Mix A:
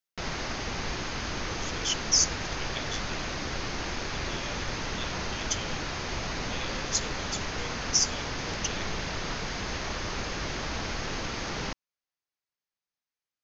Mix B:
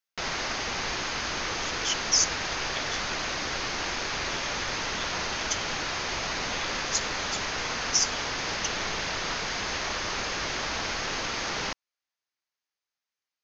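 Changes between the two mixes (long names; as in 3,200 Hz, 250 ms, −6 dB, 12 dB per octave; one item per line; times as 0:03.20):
background +5.0 dB
master: add low-shelf EQ 350 Hz −11.5 dB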